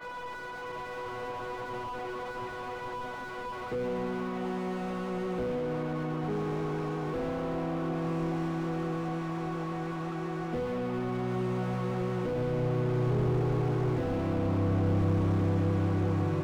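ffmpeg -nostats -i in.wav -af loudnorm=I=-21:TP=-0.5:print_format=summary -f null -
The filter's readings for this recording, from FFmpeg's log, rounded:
Input Integrated:    -31.3 LUFS
Input True Peak:     -17.1 dBTP
Input LRA:             6.9 LU
Input Threshold:     -41.3 LUFS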